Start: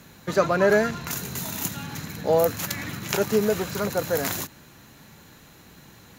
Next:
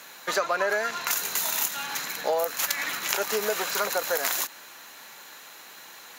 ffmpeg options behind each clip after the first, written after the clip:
ffmpeg -i in.wav -filter_complex "[0:a]asplit=2[link_01][link_02];[link_02]alimiter=limit=-14.5dB:level=0:latency=1:release=287,volume=2.5dB[link_03];[link_01][link_03]amix=inputs=2:normalize=0,highpass=730,acompressor=threshold=-22dB:ratio=5" out.wav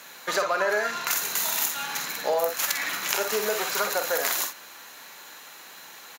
ffmpeg -i in.wav -af "aecho=1:1:48|60:0.376|0.299" out.wav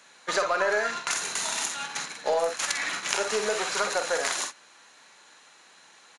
ffmpeg -i in.wav -af "agate=range=-8dB:threshold=-31dB:ratio=16:detection=peak,aresample=22050,aresample=44100,aeval=exprs='0.668*(cos(1*acos(clip(val(0)/0.668,-1,1)))-cos(1*PI/2))+0.0106*(cos(6*acos(clip(val(0)/0.668,-1,1)))-cos(6*PI/2))+0.00531*(cos(7*acos(clip(val(0)/0.668,-1,1)))-cos(7*PI/2))':channel_layout=same" out.wav

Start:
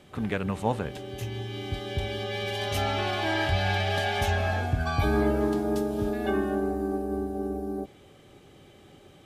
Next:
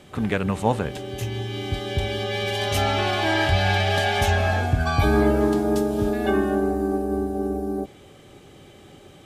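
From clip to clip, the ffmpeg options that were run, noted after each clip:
ffmpeg -i in.wav -af "equalizer=frequency=7700:width=1.5:gain=2.5,volume=5.5dB" out.wav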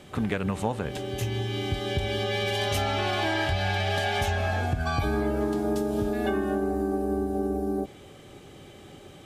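ffmpeg -i in.wav -af "acompressor=threshold=-23dB:ratio=6" out.wav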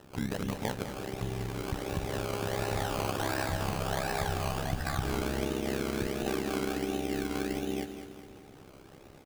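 ffmpeg -i in.wav -filter_complex "[0:a]acrusher=samples=19:mix=1:aa=0.000001:lfo=1:lforange=11.4:lforate=1.4,tremolo=f=66:d=0.947,asplit=2[link_01][link_02];[link_02]aecho=0:1:204|408|612|816|1020:0.316|0.158|0.0791|0.0395|0.0198[link_03];[link_01][link_03]amix=inputs=2:normalize=0,volume=-2dB" out.wav

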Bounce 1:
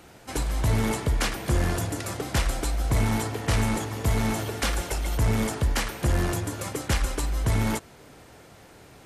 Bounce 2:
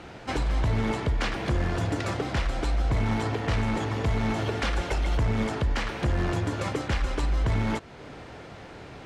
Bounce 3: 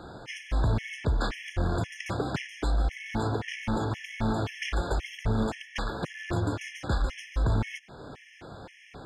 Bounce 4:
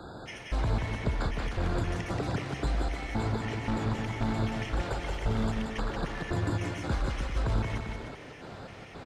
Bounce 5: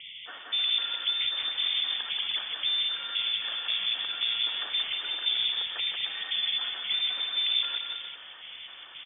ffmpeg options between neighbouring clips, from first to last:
ffmpeg -i in.wav -af "lowpass=4000,alimiter=level_in=1dB:limit=-24dB:level=0:latency=1:release=322,volume=-1dB,volume=7dB" out.wav
ffmpeg -i in.wav -af "afftfilt=real='re*gt(sin(2*PI*1.9*pts/sr)*(1-2*mod(floor(b*sr/1024/1700),2)),0)':imag='im*gt(sin(2*PI*1.9*pts/sr)*(1-2*mod(floor(b*sr/1024/1700),2)),0)':win_size=1024:overlap=0.75" out.wav
ffmpeg -i in.wav -filter_complex "[0:a]acrossover=split=240|1200[link_01][link_02][link_03];[link_01]acompressor=threshold=-27dB:ratio=4[link_04];[link_02]acompressor=threshold=-35dB:ratio=4[link_05];[link_03]acompressor=threshold=-43dB:ratio=4[link_06];[link_04][link_05][link_06]amix=inputs=3:normalize=0,aecho=1:1:180|306|394.2|455.9|499.2:0.631|0.398|0.251|0.158|0.1" out.wav
ffmpeg -i in.wav -af "lowpass=frequency=3100:width_type=q:width=0.5098,lowpass=frequency=3100:width_type=q:width=0.6013,lowpass=frequency=3100:width_type=q:width=0.9,lowpass=frequency=3100:width_type=q:width=2.563,afreqshift=-3600" out.wav

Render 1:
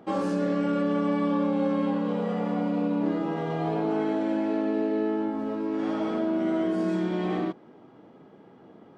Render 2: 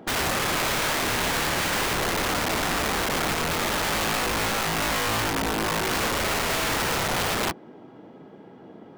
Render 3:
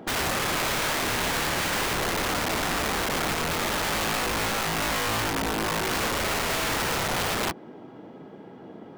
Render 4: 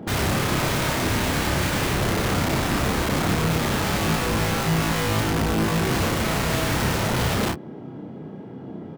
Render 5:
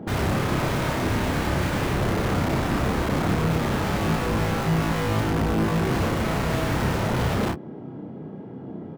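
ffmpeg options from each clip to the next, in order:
ffmpeg -i in.wav -af "bandreject=frequency=1200:width=12,aeval=exprs='(mod(20*val(0)+1,2)-1)/20':channel_layout=same,volume=5.5dB" out.wav
ffmpeg -i in.wav -af "alimiter=limit=-24dB:level=0:latency=1:release=71,volume=2dB" out.wav
ffmpeg -i in.wav -filter_complex "[0:a]equalizer=frequency=110:width=0.43:gain=13.5,asplit=2[link_01][link_02];[link_02]aecho=0:1:31|45:0.631|0.178[link_03];[link_01][link_03]amix=inputs=2:normalize=0,volume=-1.5dB" out.wav
ffmpeg -i in.wav -af "highshelf=frequency=2400:gain=-9.5" out.wav

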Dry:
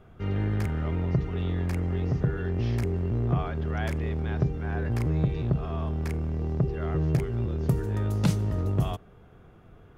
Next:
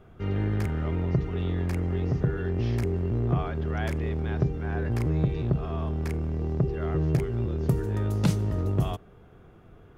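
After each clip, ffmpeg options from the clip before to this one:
ffmpeg -i in.wav -af "equalizer=frequency=360:width_type=o:width=0.67:gain=2.5" out.wav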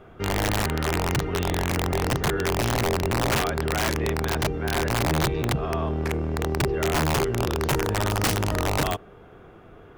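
ffmpeg -i in.wav -af "bass=frequency=250:gain=-8,treble=frequency=4000:gain=-5,aeval=exprs='(mod(17.8*val(0)+1,2)-1)/17.8':channel_layout=same,volume=8.5dB" out.wav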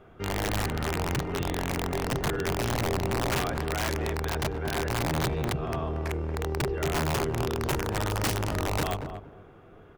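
ffmpeg -i in.wav -filter_complex "[0:a]asplit=2[link_01][link_02];[link_02]adelay=232,lowpass=frequency=820:poles=1,volume=-5.5dB,asplit=2[link_03][link_04];[link_04]adelay=232,lowpass=frequency=820:poles=1,volume=0.25,asplit=2[link_05][link_06];[link_06]adelay=232,lowpass=frequency=820:poles=1,volume=0.25[link_07];[link_01][link_03][link_05][link_07]amix=inputs=4:normalize=0,volume=-5dB" out.wav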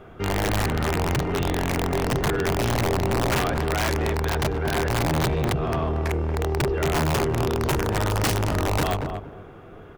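ffmpeg -i in.wav -af "asoftclip=type=tanh:threshold=-25.5dB,volume=8dB" out.wav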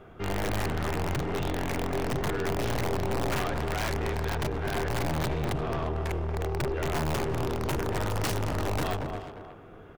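ffmpeg -i in.wav -filter_complex "[0:a]aeval=exprs='(tanh(14.1*val(0)+0.55)-tanh(0.55))/14.1':channel_layout=same,asplit=2[link_01][link_02];[link_02]adelay=350,highpass=300,lowpass=3400,asoftclip=type=hard:threshold=-28.5dB,volume=-9dB[link_03];[link_01][link_03]amix=inputs=2:normalize=0,volume=-2.5dB" out.wav

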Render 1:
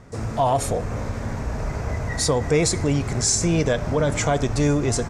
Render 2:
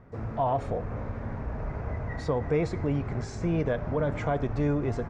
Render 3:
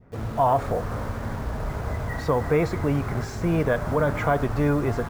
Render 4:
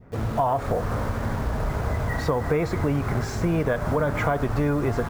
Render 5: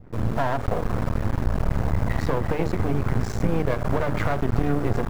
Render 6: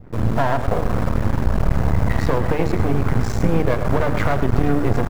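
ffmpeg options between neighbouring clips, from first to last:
ffmpeg -i in.wav -af "lowpass=1900,volume=-6.5dB" out.wav
ffmpeg -i in.wav -filter_complex "[0:a]adynamicequalizer=threshold=0.00501:dfrequency=1300:dqfactor=1.1:tfrequency=1300:tqfactor=1.1:attack=5:release=100:ratio=0.375:range=3.5:mode=boostabove:tftype=bell,asplit=2[link_01][link_02];[link_02]acrusher=bits=6:mix=0:aa=0.000001,volume=-5dB[link_03];[link_01][link_03]amix=inputs=2:normalize=0" out.wav
ffmpeg -i in.wav -af "acompressor=threshold=-24dB:ratio=4,volume=4dB" out.wav
ffmpeg -i in.wav -af "lowshelf=frequency=310:gain=9,bandreject=frequency=50:width_type=h:width=6,bandreject=frequency=100:width_type=h:width=6,bandreject=frequency=150:width_type=h:width=6,bandreject=frequency=200:width_type=h:width=6,bandreject=frequency=250:width_type=h:width=6,bandreject=frequency=300:width_type=h:width=6,bandreject=frequency=350:width_type=h:width=6,bandreject=frequency=400:width_type=h:width=6,bandreject=frequency=450:width_type=h:width=6,aeval=exprs='max(val(0),0)':channel_layout=same" out.wav
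ffmpeg -i in.wav -af "aecho=1:1:107:0.266,volume=4.5dB" out.wav

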